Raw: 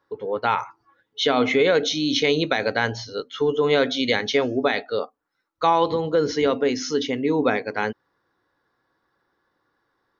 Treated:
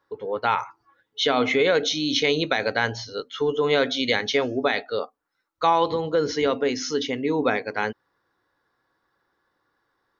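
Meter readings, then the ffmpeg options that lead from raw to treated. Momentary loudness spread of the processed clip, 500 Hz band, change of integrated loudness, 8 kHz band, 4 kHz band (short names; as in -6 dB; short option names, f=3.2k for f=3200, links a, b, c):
10 LU, -2.0 dB, -1.5 dB, n/a, 0.0 dB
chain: -af "equalizer=f=220:w=0.46:g=-3"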